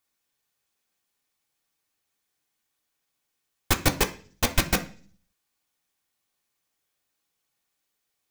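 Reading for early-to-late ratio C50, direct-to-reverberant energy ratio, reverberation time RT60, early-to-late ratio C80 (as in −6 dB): 15.0 dB, 3.0 dB, 0.40 s, 19.5 dB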